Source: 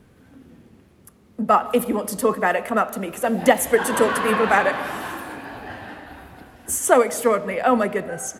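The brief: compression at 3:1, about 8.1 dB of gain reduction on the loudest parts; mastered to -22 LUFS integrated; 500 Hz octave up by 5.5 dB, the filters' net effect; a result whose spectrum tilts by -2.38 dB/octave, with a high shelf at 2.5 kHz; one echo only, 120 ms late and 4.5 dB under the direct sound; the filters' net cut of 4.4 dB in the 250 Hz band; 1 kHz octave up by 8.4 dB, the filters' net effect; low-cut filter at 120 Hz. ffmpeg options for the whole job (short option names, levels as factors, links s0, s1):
-af "highpass=120,equalizer=f=250:t=o:g=-6.5,equalizer=f=500:t=o:g=5,equalizer=f=1000:t=o:g=8.5,highshelf=f=2500:g=8.5,acompressor=threshold=0.2:ratio=3,aecho=1:1:120:0.596,volume=0.596"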